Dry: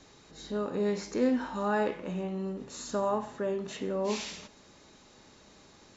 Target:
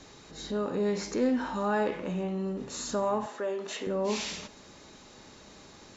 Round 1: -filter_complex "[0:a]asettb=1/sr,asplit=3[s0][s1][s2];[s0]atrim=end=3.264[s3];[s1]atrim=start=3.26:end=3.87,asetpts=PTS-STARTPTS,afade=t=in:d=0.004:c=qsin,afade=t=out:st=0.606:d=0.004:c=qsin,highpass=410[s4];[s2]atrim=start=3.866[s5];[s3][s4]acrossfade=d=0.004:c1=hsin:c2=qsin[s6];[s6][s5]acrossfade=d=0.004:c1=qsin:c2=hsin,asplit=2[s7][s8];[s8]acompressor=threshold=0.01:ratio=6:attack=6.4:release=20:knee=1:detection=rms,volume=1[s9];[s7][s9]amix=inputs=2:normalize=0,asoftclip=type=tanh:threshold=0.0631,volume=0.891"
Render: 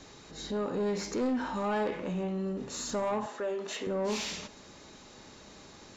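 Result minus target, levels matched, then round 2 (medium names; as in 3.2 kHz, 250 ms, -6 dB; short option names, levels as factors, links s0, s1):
saturation: distortion +17 dB
-filter_complex "[0:a]asettb=1/sr,asplit=3[s0][s1][s2];[s0]atrim=end=3.264[s3];[s1]atrim=start=3.26:end=3.87,asetpts=PTS-STARTPTS,afade=t=in:d=0.004:c=qsin,afade=t=out:st=0.606:d=0.004:c=qsin,highpass=410[s4];[s2]atrim=start=3.866[s5];[s3][s4]acrossfade=d=0.004:c1=hsin:c2=qsin[s6];[s6][s5]acrossfade=d=0.004:c1=qsin:c2=hsin,asplit=2[s7][s8];[s8]acompressor=threshold=0.01:ratio=6:attack=6.4:release=20:knee=1:detection=rms,volume=1[s9];[s7][s9]amix=inputs=2:normalize=0,asoftclip=type=tanh:threshold=0.224,volume=0.891"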